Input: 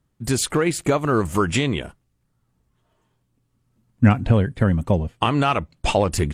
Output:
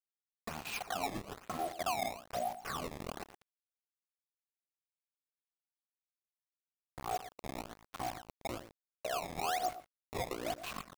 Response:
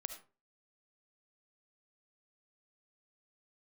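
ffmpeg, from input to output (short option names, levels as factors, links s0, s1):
-filter_complex "[0:a]acompressor=threshold=0.0355:ratio=20,asetrate=25442,aresample=44100,asplit=3[s0][s1][s2];[s0]bandpass=f=730:t=q:w=8,volume=1[s3];[s1]bandpass=f=1090:t=q:w=8,volume=0.501[s4];[s2]bandpass=f=2440:t=q:w=8,volume=0.355[s5];[s3][s4][s5]amix=inputs=3:normalize=0,asplit=2[s6][s7];[1:a]atrim=start_sample=2205,asetrate=61740,aresample=44100[s8];[s7][s8]afir=irnorm=-1:irlink=0,volume=1.33[s9];[s6][s9]amix=inputs=2:normalize=0,acrusher=bits=7:mix=0:aa=0.000001,alimiter=level_in=4.47:limit=0.0631:level=0:latency=1:release=250,volume=0.224,highshelf=f=2500:g=-6,aecho=1:1:115:0.224,acrusher=samples=17:mix=1:aa=0.000001:lfo=1:lforange=27.2:lforate=1.1,volume=3.16"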